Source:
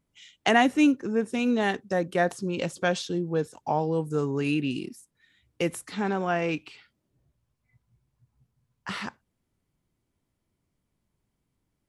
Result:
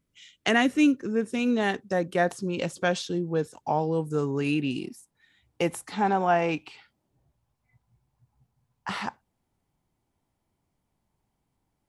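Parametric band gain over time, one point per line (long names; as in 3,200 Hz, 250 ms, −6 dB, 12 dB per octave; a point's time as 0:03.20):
parametric band 820 Hz 0.56 octaves
0:01.09 −8.5 dB
0:01.77 +0.5 dB
0:04.37 +0.5 dB
0:04.86 +10 dB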